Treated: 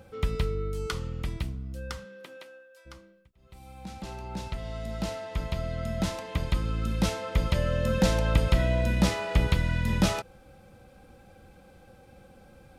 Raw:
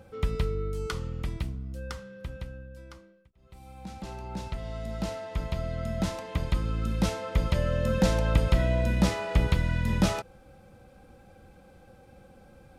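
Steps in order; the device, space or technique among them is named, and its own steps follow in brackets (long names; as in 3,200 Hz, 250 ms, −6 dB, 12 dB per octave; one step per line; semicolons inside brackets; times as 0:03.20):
presence and air boost (parametric band 3,200 Hz +2.5 dB 1.8 octaves; high-shelf EQ 9,700 Hz +4 dB)
0:02.04–0:02.85: high-pass filter 190 Hz → 660 Hz 24 dB per octave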